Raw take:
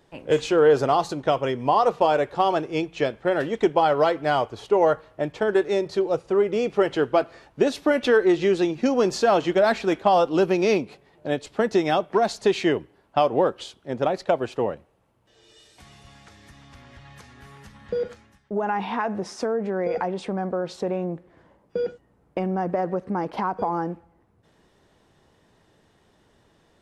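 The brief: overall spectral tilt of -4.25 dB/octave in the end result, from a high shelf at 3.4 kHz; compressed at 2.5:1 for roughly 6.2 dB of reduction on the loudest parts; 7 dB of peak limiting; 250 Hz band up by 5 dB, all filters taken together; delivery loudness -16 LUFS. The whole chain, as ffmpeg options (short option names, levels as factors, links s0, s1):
-af "equalizer=f=250:t=o:g=7.5,highshelf=f=3400:g=-4.5,acompressor=threshold=0.1:ratio=2.5,volume=3.16,alimiter=limit=0.562:level=0:latency=1"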